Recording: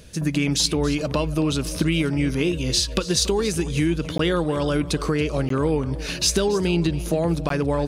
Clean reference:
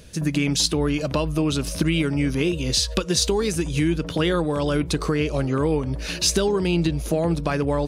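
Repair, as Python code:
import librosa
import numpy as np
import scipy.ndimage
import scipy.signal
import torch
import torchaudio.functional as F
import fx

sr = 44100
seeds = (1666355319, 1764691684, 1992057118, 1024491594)

y = fx.fix_declip(x, sr, threshold_db=-8.5)
y = fx.fix_interpolate(y, sr, at_s=(4.18, 5.49, 7.49), length_ms=13.0)
y = fx.fix_echo_inverse(y, sr, delay_ms=279, level_db=-16.5)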